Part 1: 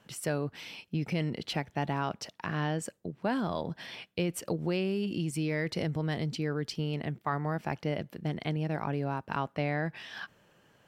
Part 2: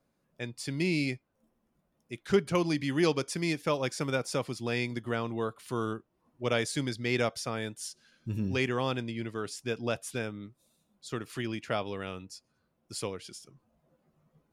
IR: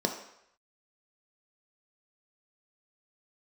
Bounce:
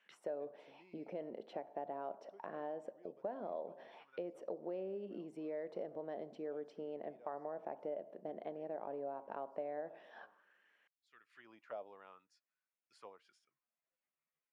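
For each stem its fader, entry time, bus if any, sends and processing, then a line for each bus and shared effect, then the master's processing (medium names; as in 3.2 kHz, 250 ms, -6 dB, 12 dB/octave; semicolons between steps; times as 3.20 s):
-3.0 dB, 0.00 s, send -16 dB, peaking EQ 120 Hz -13 dB 0.37 oct
-9.5 dB, 0.00 s, no send, high-pass 130 Hz; auto duck -17 dB, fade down 1.55 s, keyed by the first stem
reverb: on, RT60 0.75 s, pre-delay 3 ms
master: auto-wah 610–2300 Hz, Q 2.7, down, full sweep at -38.5 dBFS; compression 3:1, threshold -40 dBFS, peak gain reduction 8.5 dB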